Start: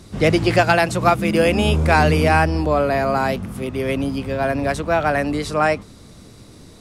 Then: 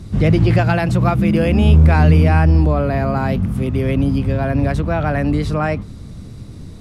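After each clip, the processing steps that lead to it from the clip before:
dynamic equaliser 8,000 Hz, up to −5 dB, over −41 dBFS, Q 0.91
in parallel at +2.5 dB: brickwall limiter −16 dBFS, peak gain reduction 11.5 dB
on the sum: bass and treble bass +13 dB, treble −3 dB
level −7.5 dB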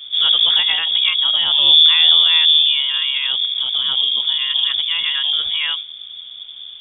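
voice inversion scrambler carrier 3,500 Hz
level −2.5 dB

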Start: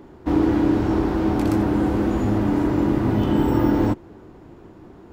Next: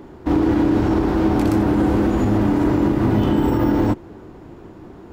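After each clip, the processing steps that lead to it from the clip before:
brickwall limiter −13.5 dBFS, peak gain reduction 7 dB
level +4.5 dB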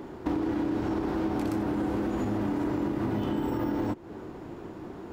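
low-shelf EQ 100 Hz −9 dB
downward compressor 4 to 1, threshold −28 dBFS, peak gain reduction 11.5 dB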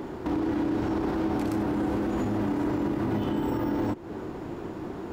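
brickwall limiter −25 dBFS, peak gain reduction 7.5 dB
level +5 dB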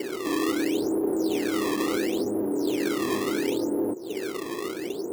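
in parallel at −4 dB: hard clipping −30.5 dBFS, distortion −8 dB
on the sum: resonant band-pass 420 Hz, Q 3.2
sample-and-hold swept by an LFO 17×, swing 160% 0.72 Hz
level +5.5 dB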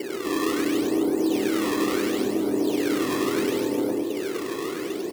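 reverse bouncing-ball delay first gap 100 ms, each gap 1.6×, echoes 5

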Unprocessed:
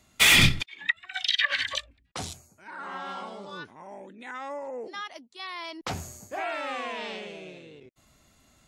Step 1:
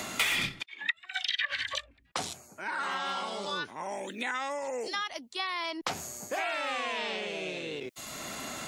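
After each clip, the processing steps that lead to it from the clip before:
low-shelf EQ 200 Hz −12 dB
multiband upward and downward compressor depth 100%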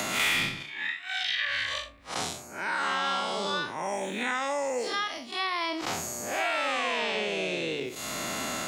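spectrum smeared in time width 115 ms
hum removal 74.03 Hz, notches 16
multiband upward and downward compressor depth 40%
level +6.5 dB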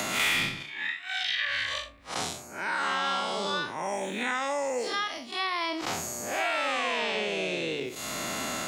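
no processing that can be heard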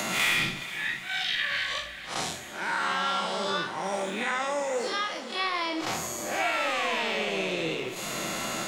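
flanger 1.6 Hz, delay 3.2 ms, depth 5.9 ms, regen +77%
feedback delay with all-pass diffusion 475 ms, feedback 67%, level −14 dB
convolution reverb, pre-delay 5 ms, DRR 9.5 dB
level +4.5 dB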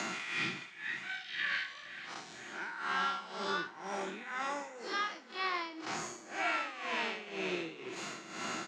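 amplitude tremolo 2 Hz, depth 77%
loudspeaker in its box 160–6,700 Hz, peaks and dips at 340 Hz +4 dB, 560 Hz −8 dB, 1,500 Hz +4 dB, 3,500 Hz −4 dB
single-tap delay 972 ms −21.5 dB
level −5 dB

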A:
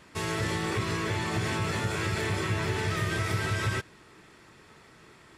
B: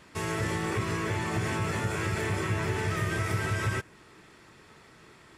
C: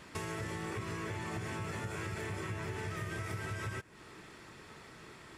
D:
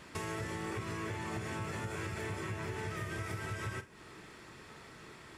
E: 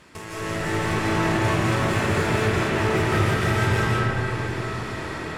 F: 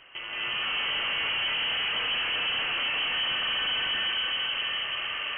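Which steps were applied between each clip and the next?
dynamic equaliser 4,000 Hz, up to −7 dB, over −53 dBFS, Q 1.8
downward compressor 4 to 1, threshold −40 dBFS, peak gain reduction 13 dB; level +1.5 dB
flutter between parallel walls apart 7.8 metres, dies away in 0.21 s
automatic gain control gain up to 9 dB; tube saturation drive 34 dB, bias 0.7; convolution reverb RT60 4.4 s, pre-delay 125 ms, DRR −10 dB; level +5 dB
gain into a clipping stage and back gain 26.5 dB; high-frequency loss of the air 240 metres; voice inversion scrambler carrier 3,100 Hz

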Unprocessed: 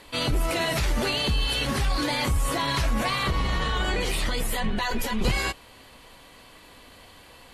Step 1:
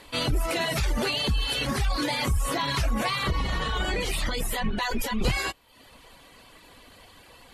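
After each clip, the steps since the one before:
reverb reduction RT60 0.66 s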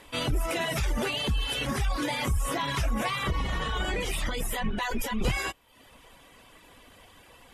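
notch filter 4,300 Hz, Q 5.2
level −2 dB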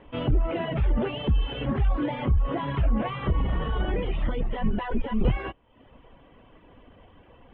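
Chebyshev low-pass filter 3,100 Hz, order 5
parametric band 2,300 Hz −13 dB 2.2 octaves
level +5.5 dB

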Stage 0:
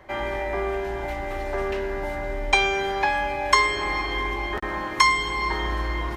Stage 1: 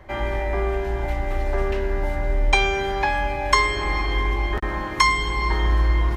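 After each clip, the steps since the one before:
low-shelf EQ 140 Hz +12 dB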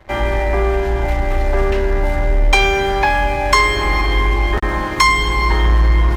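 leveller curve on the samples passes 2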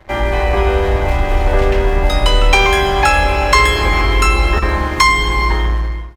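fade-out on the ending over 0.76 s
delay with pitch and tempo change per echo 252 ms, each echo +4 semitones, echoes 2, each echo −6 dB
level +1.5 dB

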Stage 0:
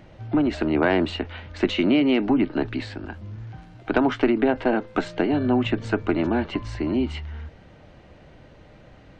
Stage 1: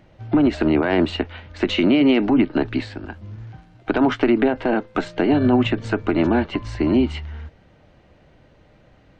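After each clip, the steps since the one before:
brickwall limiter −16 dBFS, peak gain reduction 8.5 dB
expander for the loud parts 1.5 to 1, over −45 dBFS
level +8 dB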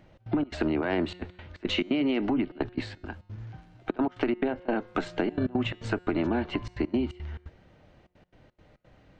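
gate pattern "xx.xx.xxxxxxx.x." 173 BPM −24 dB
tuned comb filter 180 Hz, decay 1.2 s, mix 40%
downward compressor, threshold −23 dBFS, peak gain reduction 7 dB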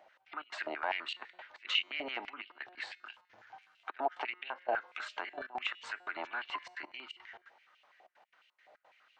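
brickwall limiter −20.5 dBFS, peak gain reduction 6 dB
high-pass on a step sequencer 12 Hz 700–2,800 Hz
level −5 dB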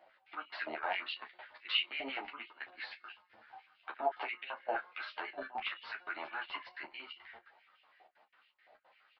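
double-tracking delay 26 ms −10.5 dB
downsampling to 11,025 Hz
string-ensemble chorus
level +1.5 dB

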